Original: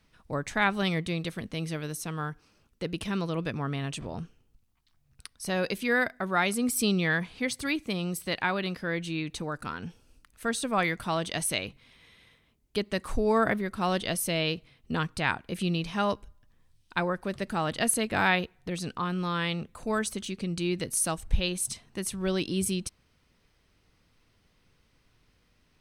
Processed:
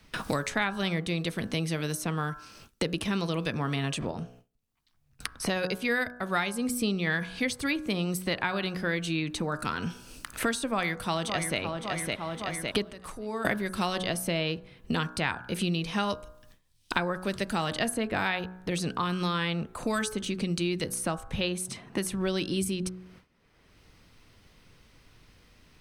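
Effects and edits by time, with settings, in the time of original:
0:04.11–0:07.07: expander for the loud parts, over −41 dBFS
0:10.68–0:11.59: delay throw 560 ms, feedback 40%, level −9.5 dB
0:12.88–0:13.45: downward compressor, threshold −45 dBFS
whole clip: hum removal 61.36 Hz, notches 28; noise gate with hold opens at −53 dBFS; multiband upward and downward compressor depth 100%

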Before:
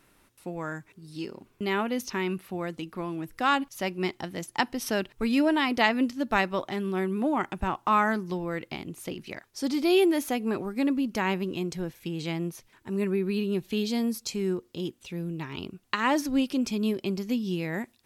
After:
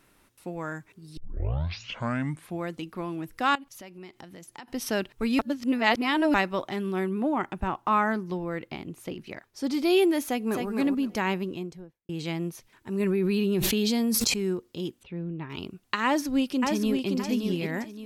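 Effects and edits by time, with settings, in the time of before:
0:01.17: tape start 1.45 s
0:03.55–0:04.68: downward compressor 4 to 1, threshold −43 dBFS
0:05.39–0:06.34: reverse
0:07.09–0:09.71: parametric band 9,600 Hz −6 dB 2.8 octaves
0:10.25–0:10.68: delay throw 260 ms, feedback 20%, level −4.5 dB
0:11.30–0:12.09: fade out and dull
0:13.00–0:14.34: envelope flattener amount 100%
0:15.03–0:15.50: high-frequency loss of the air 430 metres
0:16.05–0:17.09: delay throw 570 ms, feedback 30%, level −4 dB

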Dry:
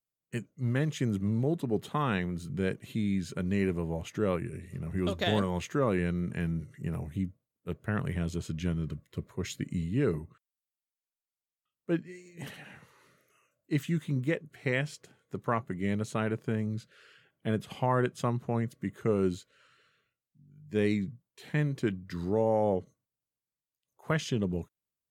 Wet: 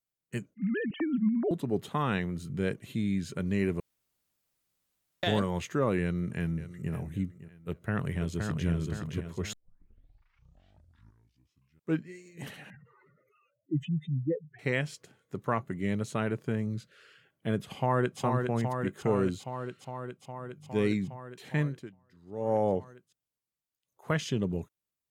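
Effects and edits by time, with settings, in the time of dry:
0:00.54–0:01.51: three sine waves on the formant tracks
0:03.80–0:05.23: fill with room tone
0:06.01–0:06.92: delay throw 560 ms, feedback 35%, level −14.5 dB
0:07.69–0:08.68: delay throw 520 ms, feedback 50%, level −4 dB
0:09.53: tape start 2.53 s
0:12.70–0:14.59: expanding power law on the bin magnitudes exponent 3.1
0:17.75–0:18.20: delay throw 410 ms, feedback 80%, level −4.5 dB
0:19.26–0:20.92: notch filter 1,700 Hz, Q 8.7
0:21.64–0:22.53: duck −23.5 dB, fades 0.33 s quadratic

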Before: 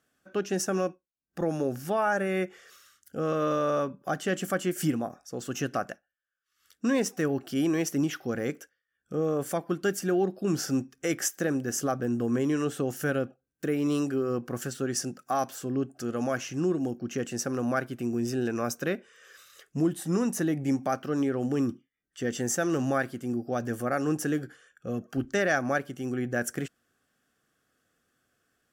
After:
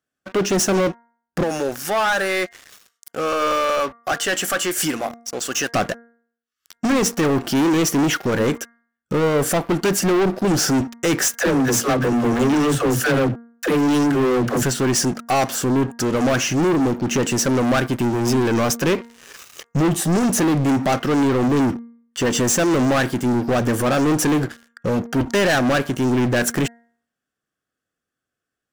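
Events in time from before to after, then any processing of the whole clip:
0:01.43–0:05.74: high-pass filter 1,300 Hz 6 dB per octave
0:11.32–0:14.63: all-pass dispersion lows, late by 87 ms, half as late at 310 Hz
0:18.85–0:20.01: EQ curve with evenly spaced ripples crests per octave 0.75, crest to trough 7 dB
whole clip: leveller curve on the samples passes 5; parametric band 14,000 Hz −3 dB 0.74 octaves; hum removal 233.8 Hz, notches 9

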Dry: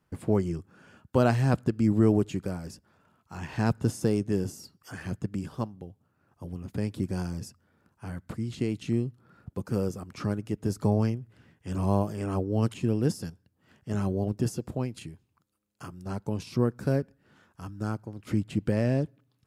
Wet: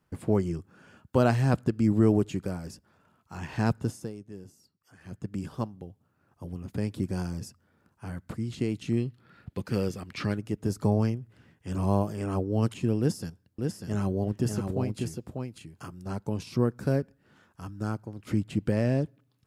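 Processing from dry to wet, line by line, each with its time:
0:03.68–0:05.44: duck −16 dB, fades 0.45 s
0:08.97–0:10.37: flat-topped bell 2,800 Hz +9.5 dB
0:12.99–0:15.95: single-tap delay 594 ms −4.5 dB

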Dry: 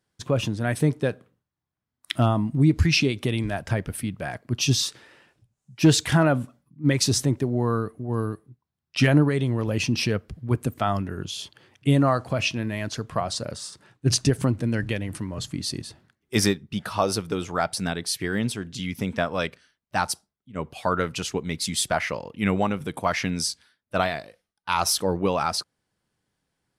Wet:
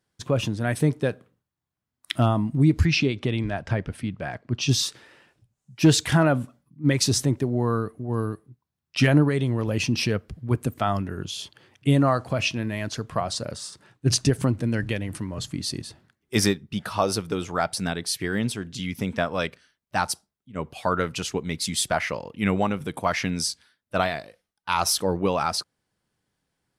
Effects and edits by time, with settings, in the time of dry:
0:02.85–0:04.69: high-frequency loss of the air 91 metres

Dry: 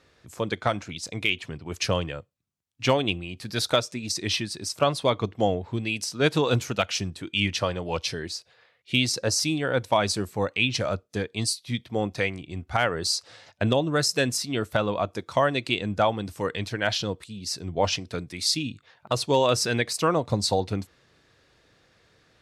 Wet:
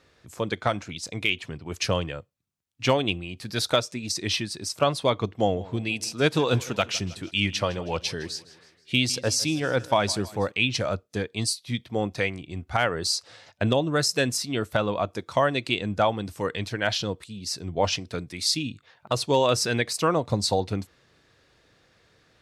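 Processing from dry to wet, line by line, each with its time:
0:05.39–0:10.52: repeating echo 159 ms, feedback 50%, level −19 dB

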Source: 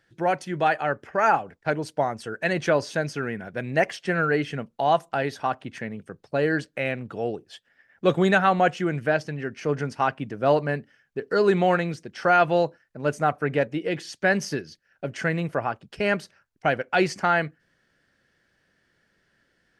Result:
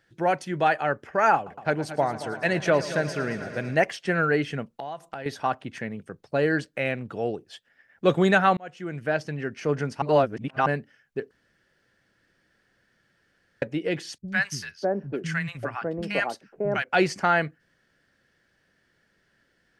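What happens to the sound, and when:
0:01.35–0:03.75: echo machine with several playback heads 112 ms, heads first and second, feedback 68%, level −16 dB
0:04.74–0:05.26: downward compressor 10 to 1, threshold −31 dBFS
0:08.57–0:09.34: fade in
0:10.02–0:10.66: reverse
0:11.31–0:13.62: fill with room tone
0:14.18–0:16.84: three-band delay without the direct sound lows, highs, mids 100/600 ms, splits 200/950 Hz

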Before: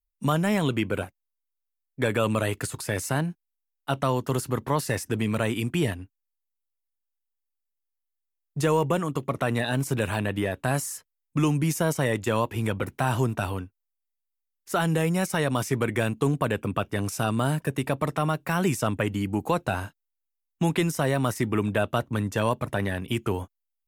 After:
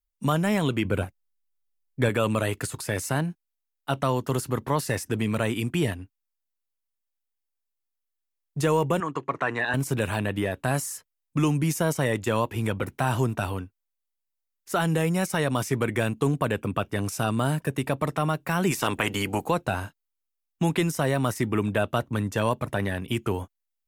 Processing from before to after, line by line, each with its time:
0:00.85–0:02.09: low-shelf EQ 170 Hz +8.5 dB
0:09.00–0:09.74: loudspeaker in its box 200–6,600 Hz, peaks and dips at 220 Hz −9 dB, 580 Hz −5 dB, 1,000 Hz +6 dB, 1,700 Hz +7 dB, 3,500 Hz −7 dB, 5,300 Hz −7 dB
0:18.70–0:19.44: ceiling on every frequency bin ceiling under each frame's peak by 17 dB

